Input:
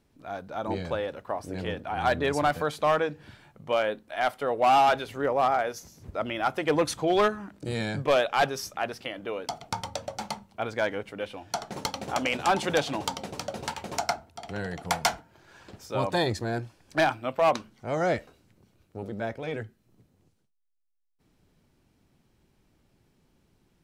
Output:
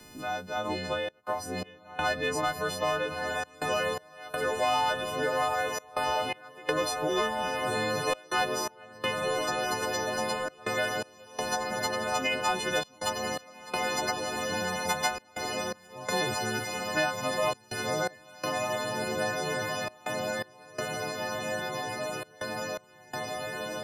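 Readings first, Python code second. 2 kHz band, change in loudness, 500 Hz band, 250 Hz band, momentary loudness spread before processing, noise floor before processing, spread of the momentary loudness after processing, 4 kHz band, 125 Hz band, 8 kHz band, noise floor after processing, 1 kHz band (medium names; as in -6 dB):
+2.0 dB, -2.5 dB, -2.5 dB, -3.5 dB, 12 LU, -69 dBFS, 7 LU, +2.5 dB, -4.5 dB, +4.5 dB, -55 dBFS, -2.5 dB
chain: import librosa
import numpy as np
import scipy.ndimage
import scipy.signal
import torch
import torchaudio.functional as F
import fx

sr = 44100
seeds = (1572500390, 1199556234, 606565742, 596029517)

p1 = fx.freq_snap(x, sr, grid_st=3)
p2 = fx.high_shelf(p1, sr, hz=9000.0, db=-9.5)
p3 = p2 + fx.echo_diffused(p2, sr, ms=1313, feedback_pct=70, wet_db=-5.0, dry=0)
p4 = fx.step_gate(p3, sr, bpm=83, pattern='xxxxxx.xx..xx', floor_db=-24.0, edge_ms=4.5)
p5 = fx.band_squash(p4, sr, depth_pct=70)
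y = p5 * 10.0 ** (-4.5 / 20.0)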